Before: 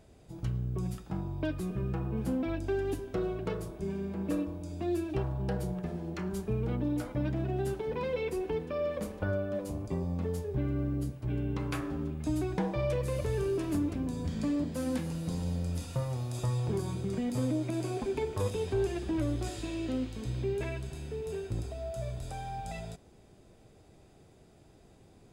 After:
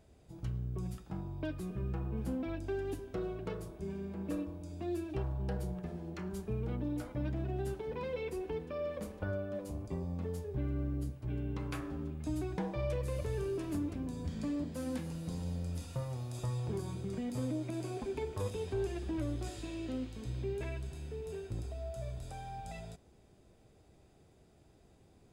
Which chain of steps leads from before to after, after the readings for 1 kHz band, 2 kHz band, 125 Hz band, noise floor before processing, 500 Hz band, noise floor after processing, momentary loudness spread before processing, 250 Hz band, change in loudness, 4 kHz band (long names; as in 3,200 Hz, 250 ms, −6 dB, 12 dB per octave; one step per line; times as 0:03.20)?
−5.5 dB, −5.5 dB, −4.5 dB, −58 dBFS, −5.5 dB, −64 dBFS, 6 LU, −5.5 dB, −5.0 dB, −5.5 dB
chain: parametric band 68 Hz +6 dB 0.3 octaves
level −5.5 dB